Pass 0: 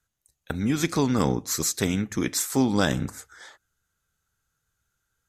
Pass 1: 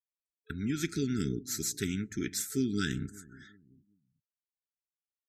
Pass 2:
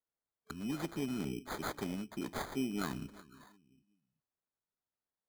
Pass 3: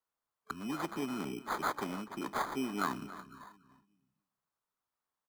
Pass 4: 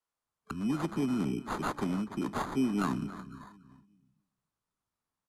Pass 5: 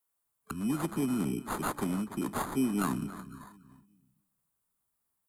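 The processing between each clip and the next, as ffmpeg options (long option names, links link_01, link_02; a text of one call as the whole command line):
ffmpeg -i in.wav -filter_complex "[0:a]afftfilt=real='re*(1-between(b*sr/4096,440,1300))':imag='im*(1-between(b*sr/4096,440,1300))':win_size=4096:overlap=0.75,asplit=2[link_01][link_02];[link_02]adelay=379,lowpass=frequency=1000:poles=1,volume=-20dB,asplit=2[link_03][link_04];[link_04]adelay=379,lowpass=frequency=1000:poles=1,volume=0.41,asplit=2[link_05][link_06];[link_06]adelay=379,lowpass=frequency=1000:poles=1,volume=0.41[link_07];[link_01][link_03][link_05][link_07]amix=inputs=4:normalize=0,afftdn=noise_reduction=35:noise_floor=-48,volume=-8dB" out.wav
ffmpeg -i in.wav -filter_complex "[0:a]equalizer=frequency=100:width=2.5:gain=-14.5,acrossover=split=100[link_01][link_02];[link_02]acrusher=samples=16:mix=1:aa=0.000001[link_03];[link_01][link_03]amix=inputs=2:normalize=0,volume=-4.5dB" out.wav
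ffmpeg -i in.wav -filter_complex "[0:a]equalizer=frequency=1100:width_type=o:width=1:gain=11,acrossover=split=170[link_01][link_02];[link_01]acompressor=threshold=-58dB:ratio=4[link_03];[link_03][link_02]amix=inputs=2:normalize=0,asplit=2[link_04][link_05];[link_05]adelay=285.7,volume=-15dB,highshelf=frequency=4000:gain=-6.43[link_06];[link_04][link_06]amix=inputs=2:normalize=0" out.wav
ffmpeg -i in.wav -filter_complex "[0:a]lowpass=frequency=12000:width=0.5412,lowpass=frequency=12000:width=1.3066,acrossover=split=260|1300|3700[link_01][link_02][link_03][link_04];[link_01]dynaudnorm=framelen=210:gausssize=3:maxgain=12dB[link_05];[link_03]aeval=exprs='clip(val(0),-1,0.00376)':channel_layout=same[link_06];[link_05][link_02][link_06][link_04]amix=inputs=4:normalize=0" out.wav
ffmpeg -i in.wav -af "aexciter=amount=4.8:drive=4.4:freq=7900" out.wav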